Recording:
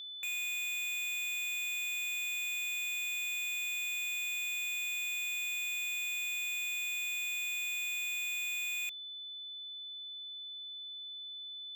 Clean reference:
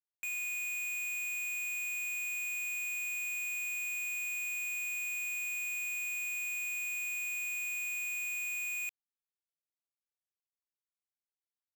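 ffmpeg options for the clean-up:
-af "bandreject=f=3500:w=30"

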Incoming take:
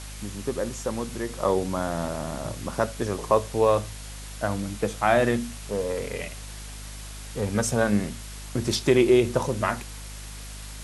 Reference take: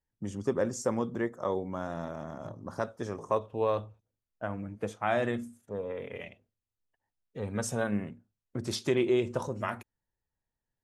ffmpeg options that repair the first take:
-af "bandreject=f=51.2:t=h:w=4,bandreject=f=102.4:t=h:w=4,bandreject=f=153.6:t=h:w=4,bandreject=f=204.8:t=h:w=4,bandreject=f=256:t=h:w=4,afwtdn=0.0089,asetnsamples=n=441:p=0,asendcmd='1.29 volume volume -8dB',volume=1"

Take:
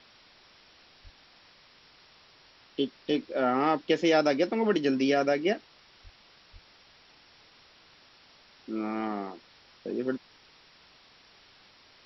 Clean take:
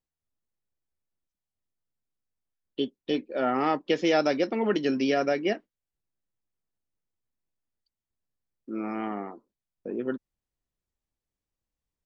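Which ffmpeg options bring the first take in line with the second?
-filter_complex "[0:a]asplit=3[s0][s1][s2];[s0]afade=t=out:st=1.03:d=0.02[s3];[s1]highpass=f=140:w=0.5412,highpass=f=140:w=1.3066,afade=t=in:st=1.03:d=0.02,afade=t=out:st=1.15:d=0.02[s4];[s2]afade=t=in:st=1.15:d=0.02[s5];[s3][s4][s5]amix=inputs=3:normalize=0,asplit=3[s6][s7][s8];[s6]afade=t=out:st=6.03:d=0.02[s9];[s7]highpass=f=140:w=0.5412,highpass=f=140:w=1.3066,afade=t=in:st=6.03:d=0.02,afade=t=out:st=6.15:d=0.02[s10];[s8]afade=t=in:st=6.15:d=0.02[s11];[s9][s10][s11]amix=inputs=3:normalize=0,asplit=3[s12][s13][s14];[s12]afade=t=out:st=6.52:d=0.02[s15];[s13]highpass=f=140:w=0.5412,highpass=f=140:w=1.3066,afade=t=in:st=6.52:d=0.02,afade=t=out:st=6.64:d=0.02[s16];[s14]afade=t=in:st=6.64:d=0.02[s17];[s15][s16][s17]amix=inputs=3:normalize=0,afwtdn=0.0025"

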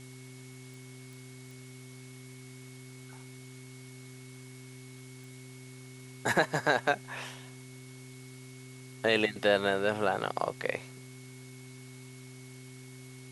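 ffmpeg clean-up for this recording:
-af "adeclick=t=4,bandreject=f=128.6:t=h:w=4,bandreject=f=257.2:t=h:w=4,bandreject=f=385.8:t=h:w=4,bandreject=f=2200:w=30,afftdn=nr=29:nf=-49"

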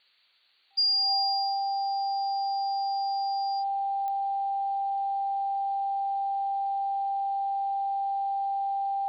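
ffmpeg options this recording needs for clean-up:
-af "adeclick=t=4,bandreject=f=790:w=30,afftdn=nr=30:nf=-29"

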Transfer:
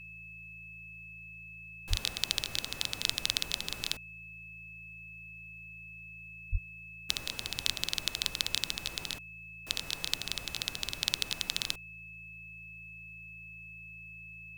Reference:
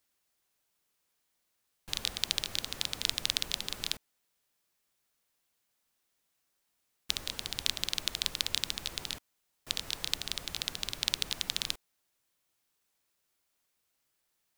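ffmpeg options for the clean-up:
-filter_complex "[0:a]bandreject=f=55:t=h:w=4,bandreject=f=110:t=h:w=4,bandreject=f=165:t=h:w=4,bandreject=f=2600:w=30,asplit=3[s0][s1][s2];[s0]afade=t=out:st=1.89:d=0.02[s3];[s1]highpass=f=140:w=0.5412,highpass=f=140:w=1.3066,afade=t=in:st=1.89:d=0.02,afade=t=out:st=2.01:d=0.02[s4];[s2]afade=t=in:st=2.01:d=0.02[s5];[s3][s4][s5]amix=inputs=3:normalize=0,asplit=3[s6][s7][s8];[s6]afade=t=out:st=6.51:d=0.02[s9];[s7]highpass=f=140:w=0.5412,highpass=f=140:w=1.3066,afade=t=in:st=6.51:d=0.02,afade=t=out:st=6.63:d=0.02[s10];[s8]afade=t=in:st=6.63:d=0.02[s11];[s9][s10][s11]amix=inputs=3:normalize=0"

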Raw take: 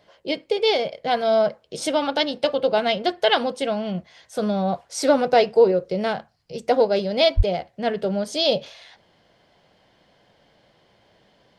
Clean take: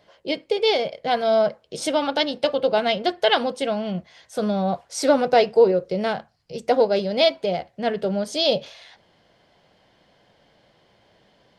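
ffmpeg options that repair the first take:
-filter_complex "[0:a]asplit=3[s0][s1][s2];[s0]afade=t=out:st=7.36:d=0.02[s3];[s1]highpass=f=140:w=0.5412,highpass=f=140:w=1.3066,afade=t=in:st=7.36:d=0.02,afade=t=out:st=7.48:d=0.02[s4];[s2]afade=t=in:st=7.48:d=0.02[s5];[s3][s4][s5]amix=inputs=3:normalize=0"

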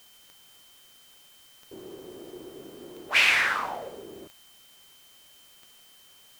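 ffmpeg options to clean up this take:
-af "adeclick=t=4,bandreject=f=3100:w=30,afftdn=nr=19:nf=-55"

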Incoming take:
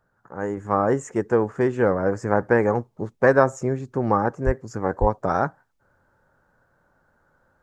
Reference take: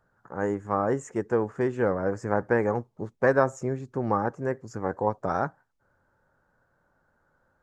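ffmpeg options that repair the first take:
-filter_complex "[0:a]asplit=3[s0][s1][s2];[s0]afade=t=out:st=4.45:d=0.02[s3];[s1]highpass=f=140:w=0.5412,highpass=f=140:w=1.3066,afade=t=in:st=4.45:d=0.02,afade=t=out:st=4.57:d=0.02[s4];[s2]afade=t=in:st=4.57:d=0.02[s5];[s3][s4][s5]amix=inputs=3:normalize=0,asplit=3[s6][s7][s8];[s6]afade=t=out:st=5:d=0.02[s9];[s7]highpass=f=140:w=0.5412,highpass=f=140:w=1.3066,afade=t=in:st=5:d=0.02,afade=t=out:st=5.12:d=0.02[s10];[s8]afade=t=in:st=5.12:d=0.02[s11];[s9][s10][s11]amix=inputs=3:normalize=0,asetnsamples=n=441:p=0,asendcmd='0.57 volume volume -5dB',volume=1"

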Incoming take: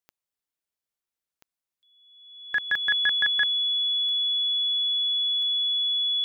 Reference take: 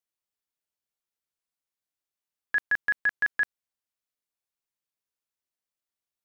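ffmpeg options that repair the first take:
-af "adeclick=t=4,bandreject=f=3400:w=30"

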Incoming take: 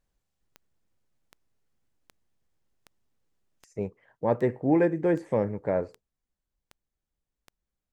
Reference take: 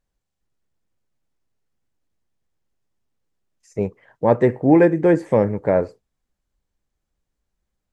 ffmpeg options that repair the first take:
-af "adeclick=t=4,asetnsamples=n=441:p=0,asendcmd='3.65 volume volume 9dB',volume=1"

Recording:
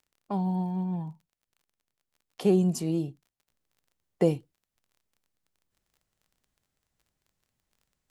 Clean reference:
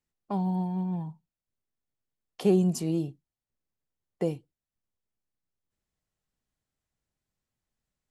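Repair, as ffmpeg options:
-af "adeclick=t=4,asetnsamples=n=441:p=0,asendcmd='3.47 volume volume -5.5dB',volume=1"

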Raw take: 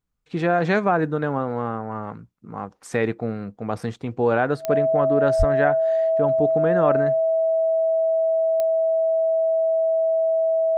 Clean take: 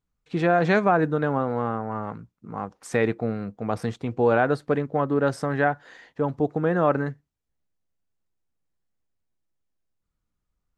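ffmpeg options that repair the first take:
-filter_complex "[0:a]adeclick=t=4,bandreject=f=650:w=30,asplit=3[s0][s1][s2];[s0]afade=t=out:st=5.38:d=0.02[s3];[s1]highpass=f=140:w=0.5412,highpass=f=140:w=1.3066,afade=t=in:st=5.38:d=0.02,afade=t=out:st=5.5:d=0.02[s4];[s2]afade=t=in:st=5.5:d=0.02[s5];[s3][s4][s5]amix=inputs=3:normalize=0"

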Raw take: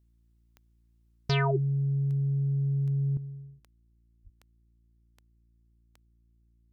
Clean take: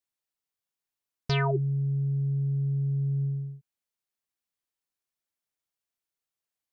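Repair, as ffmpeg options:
-filter_complex "[0:a]adeclick=t=4,bandreject=f=57.2:t=h:w=4,bandreject=f=114.4:t=h:w=4,bandreject=f=171.6:t=h:w=4,bandreject=f=228.8:t=h:w=4,bandreject=f=286:t=h:w=4,bandreject=f=343.2:t=h:w=4,asplit=3[s0][s1][s2];[s0]afade=t=out:st=4.23:d=0.02[s3];[s1]highpass=f=140:w=0.5412,highpass=f=140:w=1.3066,afade=t=in:st=4.23:d=0.02,afade=t=out:st=4.35:d=0.02[s4];[s2]afade=t=in:st=4.35:d=0.02[s5];[s3][s4][s5]amix=inputs=3:normalize=0,asetnsamples=n=441:p=0,asendcmd='3.17 volume volume 10.5dB',volume=1"

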